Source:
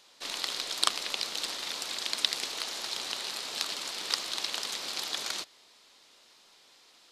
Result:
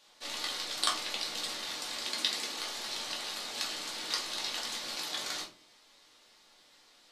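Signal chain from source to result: 2.02–2.57 resonant low shelf 140 Hz -13 dB, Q 1.5; reverb RT60 0.35 s, pre-delay 3 ms, DRR -3.5 dB; gain -6.5 dB

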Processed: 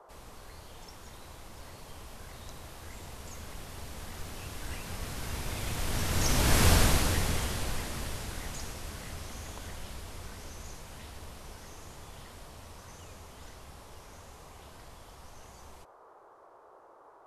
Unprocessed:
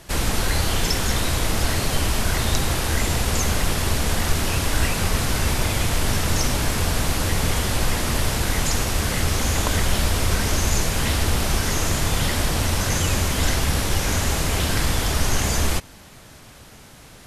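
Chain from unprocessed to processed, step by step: Doppler pass-by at 6.69, 8 m/s, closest 1.9 m; band noise 360–1200 Hz -56 dBFS

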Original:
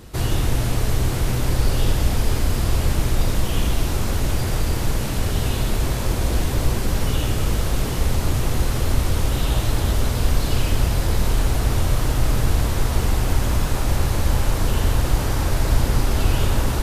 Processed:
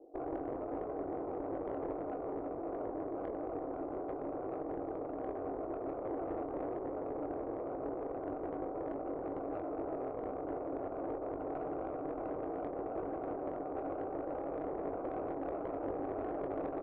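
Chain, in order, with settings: Chebyshev band-pass 270–780 Hz, order 5; tilt +2 dB/oct; tube stage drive 30 dB, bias 0.65; doubler 21 ms -8.5 dB; gain -1 dB

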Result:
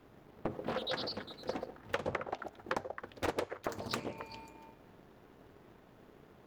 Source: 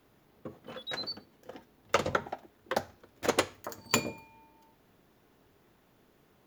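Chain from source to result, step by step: compressor 16:1, threshold -41 dBFS, peak gain reduction 21 dB; on a send: delay with a stepping band-pass 0.135 s, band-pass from 530 Hz, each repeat 1.4 oct, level -4.5 dB; on the sum: sample leveller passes 1; high shelf 2800 Hz -10 dB; Doppler distortion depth 0.84 ms; gain +7 dB

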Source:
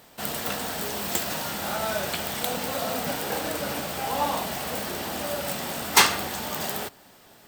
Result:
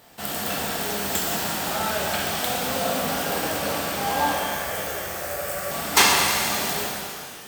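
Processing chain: 4.33–5.71 fixed phaser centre 940 Hz, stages 6; shimmer reverb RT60 2.1 s, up +12 st, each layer -8 dB, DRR -2 dB; gain -1 dB

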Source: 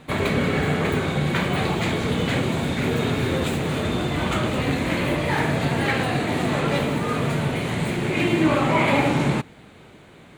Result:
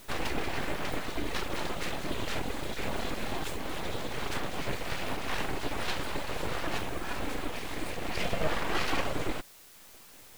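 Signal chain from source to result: reverb removal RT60 0.86 s; full-wave rectifier; requantised 8-bit, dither triangular; gain -6 dB

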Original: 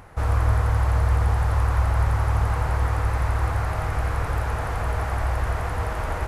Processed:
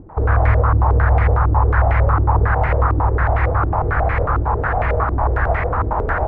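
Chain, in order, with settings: air absorption 52 m; stepped low-pass 11 Hz 320–2100 Hz; gain +5.5 dB

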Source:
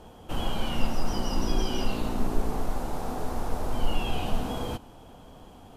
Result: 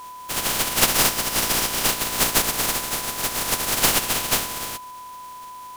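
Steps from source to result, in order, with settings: spectral contrast lowered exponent 0.17; whine 1000 Hz -36 dBFS

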